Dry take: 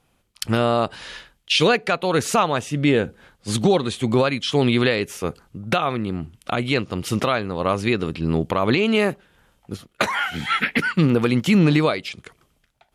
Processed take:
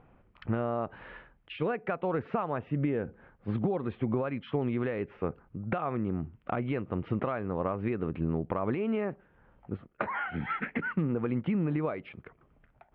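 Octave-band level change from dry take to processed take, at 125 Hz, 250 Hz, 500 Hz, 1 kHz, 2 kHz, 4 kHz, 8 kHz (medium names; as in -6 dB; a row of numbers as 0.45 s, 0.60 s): -10.0 dB, -10.5 dB, -11.0 dB, -11.5 dB, -15.0 dB, -28.0 dB, under -40 dB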